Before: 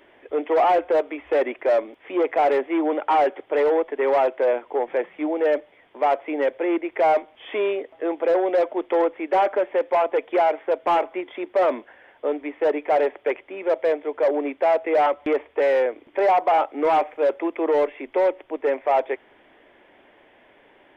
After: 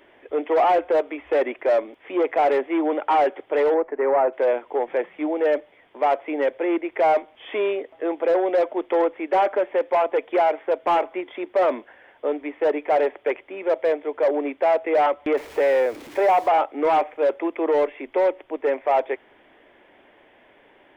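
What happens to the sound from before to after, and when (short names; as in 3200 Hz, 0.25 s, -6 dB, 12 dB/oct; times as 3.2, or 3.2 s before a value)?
3.74–4.33 LPF 1900 Hz 24 dB/oct
15.37–16.48 zero-crossing step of -37.5 dBFS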